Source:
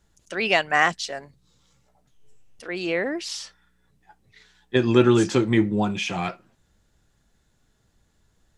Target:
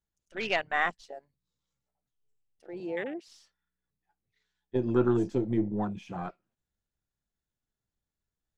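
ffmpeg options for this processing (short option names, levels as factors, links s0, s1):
-filter_complex "[0:a]aeval=exprs='if(lt(val(0),0),0.708*val(0),val(0))':c=same,asettb=1/sr,asplit=3[s0][s1][s2];[s0]atrim=end=2.804[s3];[s1]atrim=start=2.8:end=3.28,asetpts=PTS-STARTPTS,afade=t=in:d=0.004:c=qsin,afade=t=out:st=0.476:d=0.004:c=qsin,highpass=f=150:w=0.5412,highpass=f=150:w=1.3066[s4];[s2]atrim=start=3.276[s5];[s3][s4]acrossfade=d=0.004:c1=hsin:c2=qsin[s6];[s6][s5]acrossfade=d=0.004:c1=qsin:c2=hsin,afwtdn=0.0447,volume=0.473"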